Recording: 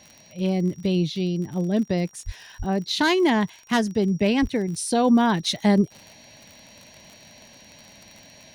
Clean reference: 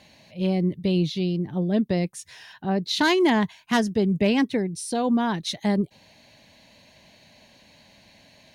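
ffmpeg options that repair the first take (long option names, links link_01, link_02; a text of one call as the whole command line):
ffmpeg -i in.wav -filter_complex "[0:a]adeclick=threshold=4,bandreject=frequency=5700:width=30,asplit=3[link_01][link_02][link_03];[link_01]afade=type=out:start_time=2.25:duration=0.02[link_04];[link_02]highpass=frequency=140:width=0.5412,highpass=frequency=140:width=1.3066,afade=type=in:start_time=2.25:duration=0.02,afade=type=out:start_time=2.37:duration=0.02[link_05];[link_03]afade=type=in:start_time=2.37:duration=0.02[link_06];[link_04][link_05][link_06]amix=inputs=3:normalize=0,asplit=3[link_07][link_08][link_09];[link_07]afade=type=out:start_time=2.58:duration=0.02[link_10];[link_08]highpass=frequency=140:width=0.5412,highpass=frequency=140:width=1.3066,afade=type=in:start_time=2.58:duration=0.02,afade=type=out:start_time=2.7:duration=0.02[link_11];[link_09]afade=type=in:start_time=2.7:duration=0.02[link_12];[link_10][link_11][link_12]amix=inputs=3:normalize=0,asplit=3[link_13][link_14][link_15];[link_13]afade=type=out:start_time=4.41:duration=0.02[link_16];[link_14]highpass=frequency=140:width=0.5412,highpass=frequency=140:width=1.3066,afade=type=in:start_time=4.41:duration=0.02,afade=type=out:start_time=4.53:duration=0.02[link_17];[link_15]afade=type=in:start_time=4.53:duration=0.02[link_18];[link_16][link_17][link_18]amix=inputs=3:normalize=0,asetnsamples=nb_out_samples=441:pad=0,asendcmd='4.68 volume volume -4.5dB',volume=0dB" out.wav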